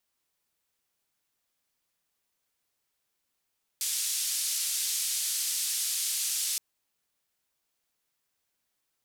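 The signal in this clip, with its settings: noise band 4.1–11 kHz, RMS -30.5 dBFS 2.77 s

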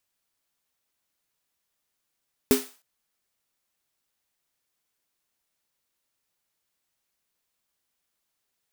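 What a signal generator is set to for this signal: snare drum length 0.31 s, tones 260 Hz, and 410 Hz, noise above 560 Hz, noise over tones -8 dB, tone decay 0.22 s, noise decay 0.39 s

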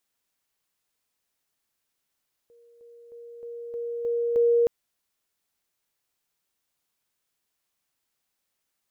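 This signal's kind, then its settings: level ladder 471 Hz -53 dBFS, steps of 6 dB, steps 7, 0.31 s 0.00 s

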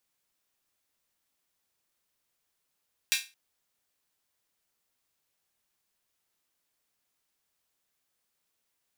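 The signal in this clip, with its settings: open hi-hat length 0.22 s, high-pass 2.4 kHz, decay 0.28 s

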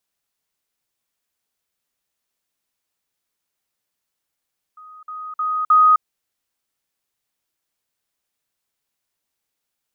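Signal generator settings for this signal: level ladder 1.25 kHz -39 dBFS, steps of 10 dB, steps 4, 0.26 s 0.05 s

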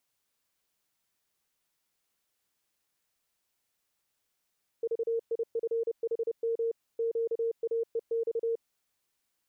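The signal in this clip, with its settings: Morse "VIFHM QAEX" 30 wpm 459 Hz -26.5 dBFS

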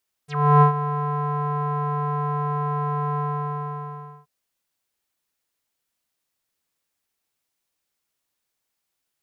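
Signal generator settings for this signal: synth note square D3 12 dB/octave, low-pass 1.1 kHz, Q 7.8, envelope 3.5 oct, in 0.07 s, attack 334 ms, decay 0.11 s, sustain -12.5 dB, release 1.08 s, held 2.90 s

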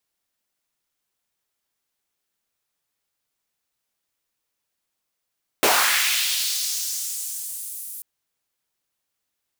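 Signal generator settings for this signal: swept filtered noise pink, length 2.39 s highpass, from 340 Hz, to 11 kHz, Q 1.5, linear, gain ramp -13.5 dB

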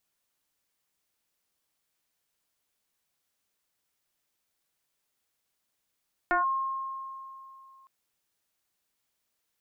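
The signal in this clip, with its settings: FM tone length 1.56 s, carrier 1.07 kHz, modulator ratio 0.34, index 2, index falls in 0.14 s linear, decay 2.81 s, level -21 dB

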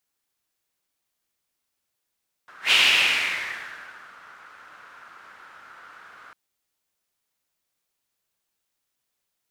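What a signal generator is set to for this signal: whoosh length 3.85 s, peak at 0.24 s, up 0.13 s, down 1.51 s, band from 1.4 kHz, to 2.8 kHz, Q 4.3, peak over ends 30 dB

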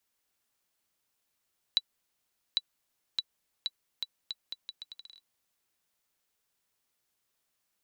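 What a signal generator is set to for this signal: bouncing ball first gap 0.80 s, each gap 0.77, 3.94 kHz, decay 41 ms -12.5 dBFS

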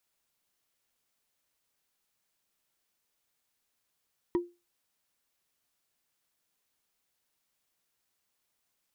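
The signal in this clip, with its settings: wood hit, lowest mode 349 Hz, decay 0.26 s, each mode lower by 9.5 dB, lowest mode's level -21 dB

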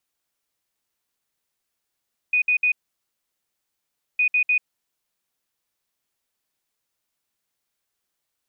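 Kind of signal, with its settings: beep pattern sine 2.48 kHz, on 0.09 s, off 0.06 s, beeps 3, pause 1.47 s, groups 2, -16 dBFS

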